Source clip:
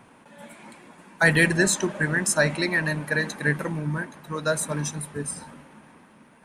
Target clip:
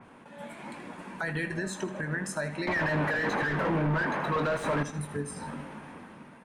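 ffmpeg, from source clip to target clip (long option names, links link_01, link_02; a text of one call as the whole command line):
ffmpeg -i in.wav -filter_complex "[0:a]asplit=2[link_01][link_02];[link_02]adelay=21,volume=-10.5dB[link_03];[link_01][link_03]amix=inputs=2:normalize=0,asettb=1/sr,asplit=3[link_04][link_05][link_06];[link_04]atrim=end=2.674[link_07];[link_05]atrim=start=2.67:end=4.83,asetpts=PTS-STARTPTS,afade=type=in:duration=0.004:curve=qsin,afade=type=out:start_time=2.156:duration=0.004:curve=qsin,asplit=2[link_08][link_09];[link_09]highpass=frequency=720:poles=1,volume=33dB,asoftclip=type=tanh:threshold=-10dB[link_10];[link_08][link_10]amix=inputs=2:normalize=0,lowpass=frequency=1500:poles=1,volume=-6dB[link_11];[link_06]atrim=start=4.826[link_12];[link_07][link_11]acrossfade=duration=0.004:curve1=hsin:curve2=qsin[link_13];[link_13][link_12]acrossfade=duration=0.004:curve1=qsin:curve2=hsin,acompressor=threshold=-38dB:ratio=2,aemphasis=mode=reproduction:type=cd,alimiter=level_in=4.5dB:limit=-24dB:level=0:latency=1:release=272,volume=-4.5dB,dynaudnorm=framelen=280:gausssize=5:maxgain=6dB,aecho=1:1:79|158|237|316:0.211|0.0951|0.0428|0.0193,adynamicequalizer=threshold=0.00398:dfrequency=3700:dqfactor=0.7:tfrequency=3700:tqfactor=0.7:attack=5:release=100:ratio=0.375:range=2:mode=cutabove:tftype=highshelf" out.wav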